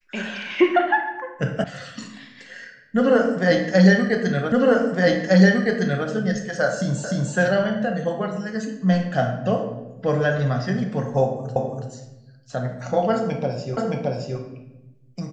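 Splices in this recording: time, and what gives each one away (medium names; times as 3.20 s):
1.64 s: sound stops dead
4.52 s: repeat of the last 1.56 s
7.04 s: repeat of the last 0.3 s
11.56 s: repeat of the last 0.33 s
13.77 s: repeat of the last 0.62 s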